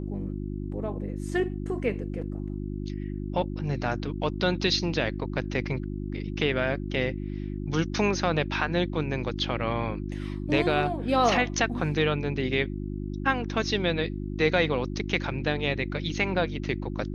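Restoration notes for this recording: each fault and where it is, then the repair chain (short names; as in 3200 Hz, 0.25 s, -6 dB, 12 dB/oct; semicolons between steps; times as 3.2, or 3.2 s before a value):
hum 50 Hz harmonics 7 -33 dBFS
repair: de-hum 50 Hz, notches 7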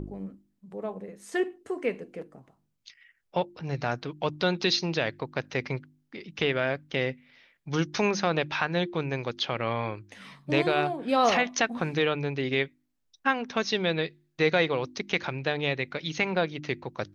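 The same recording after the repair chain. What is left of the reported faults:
none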